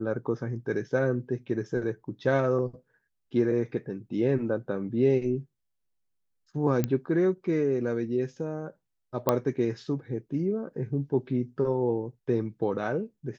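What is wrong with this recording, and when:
6.84 pop -13 dBFS
9.29 pop -9 dBFS

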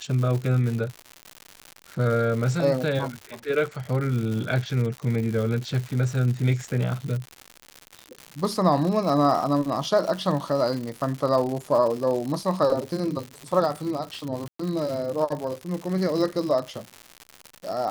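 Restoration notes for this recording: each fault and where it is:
crackle 170/s -29 dBFS
14.48–14.59 gap 0.114 s

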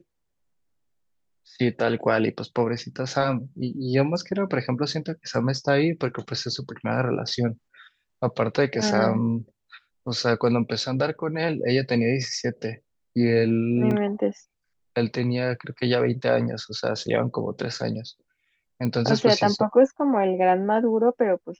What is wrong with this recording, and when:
13.91 gap 3.2 ms
18.85 pop -16 dBFS

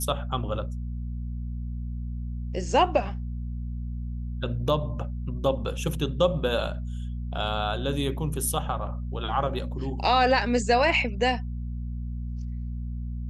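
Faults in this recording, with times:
hum 60 Hz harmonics 4 -32 dBFS

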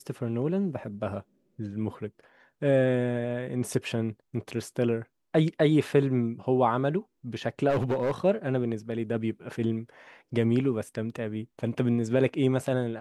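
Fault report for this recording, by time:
7.69–8.12 clipped -22 dBFS

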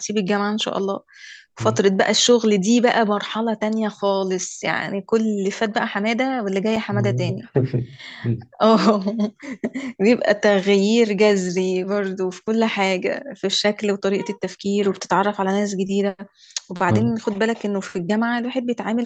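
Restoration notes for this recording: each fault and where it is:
6.76 gap 4.9 ms

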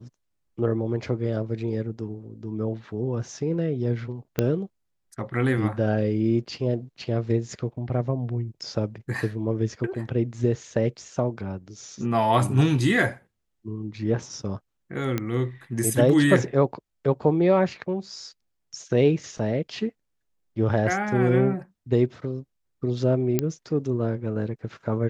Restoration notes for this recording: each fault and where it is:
4.39 pop -9 dBFS
15.18 pop -12 dBFS
23.39 pop -8 dBFS

